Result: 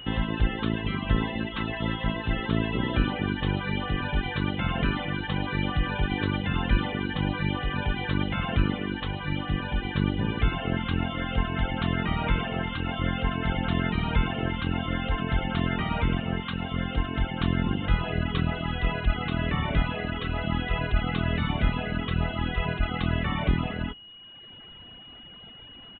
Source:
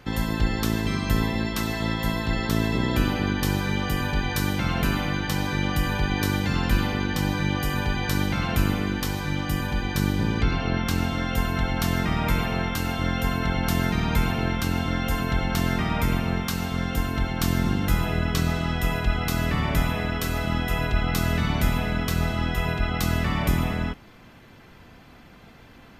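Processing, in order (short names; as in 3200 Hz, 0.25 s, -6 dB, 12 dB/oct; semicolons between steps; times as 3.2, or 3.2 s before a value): whine 2900 Hz -40 dBFS; downsampling 8000 Hz; reverb removal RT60 1.2 s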